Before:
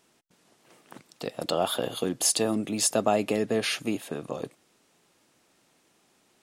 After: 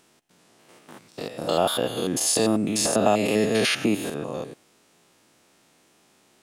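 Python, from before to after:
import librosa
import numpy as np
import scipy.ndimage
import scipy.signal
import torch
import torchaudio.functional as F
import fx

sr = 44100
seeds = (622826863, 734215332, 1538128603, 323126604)

y = fx.spec_steps(x, sr, hold_ms=100)
y = fx.band_squash(y, sr, depth_pct=70, at=(2.85, 4.1))
y = y * librosa.db_to_amplitude(6.5)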